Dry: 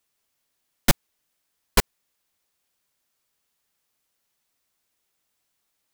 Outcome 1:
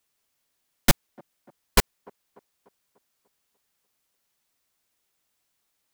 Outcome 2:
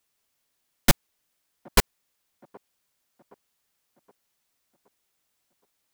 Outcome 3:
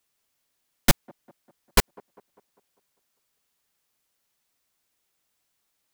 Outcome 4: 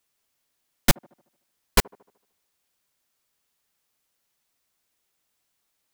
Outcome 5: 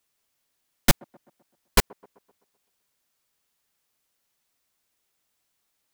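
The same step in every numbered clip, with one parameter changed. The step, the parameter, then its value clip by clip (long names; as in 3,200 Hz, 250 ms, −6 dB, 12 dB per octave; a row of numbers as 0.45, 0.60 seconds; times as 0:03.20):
delay with a band-pass on its return, delay time: 295, 770, 199, 75, 128 milliseconds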